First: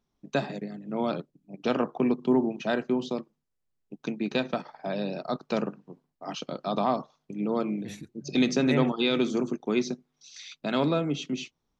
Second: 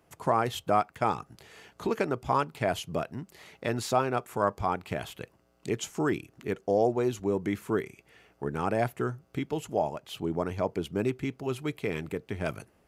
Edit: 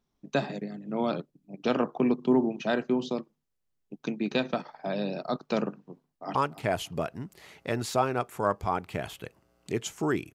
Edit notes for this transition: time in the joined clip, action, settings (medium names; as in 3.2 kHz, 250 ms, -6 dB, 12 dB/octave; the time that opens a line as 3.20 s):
first
6.00–6.35 s: echo throw 290 ms, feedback 30%, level -15 dB
6.35 s: go over to second from 2.32 s